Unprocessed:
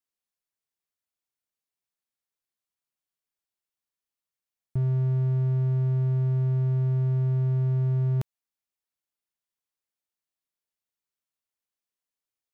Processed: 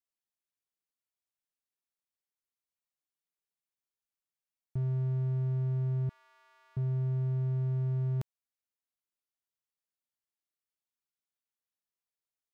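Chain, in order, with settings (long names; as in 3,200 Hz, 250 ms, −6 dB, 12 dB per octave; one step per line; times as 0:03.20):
0:06.09–0:06.77: high-pass filter 1,100 Hz 24 dB per octave
level −6.5 dB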